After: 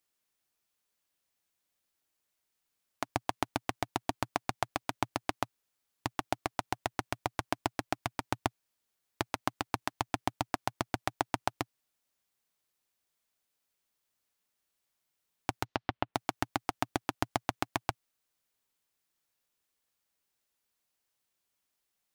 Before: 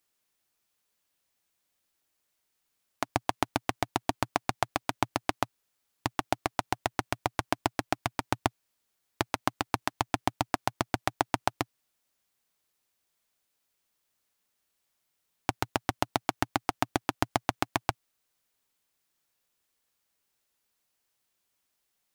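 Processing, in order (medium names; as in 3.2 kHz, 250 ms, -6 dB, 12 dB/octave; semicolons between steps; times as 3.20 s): 15.64–16.14 s: low-pass 6.2 kHz -> 2.8 kHz 24 dB/octave; trim -4 dB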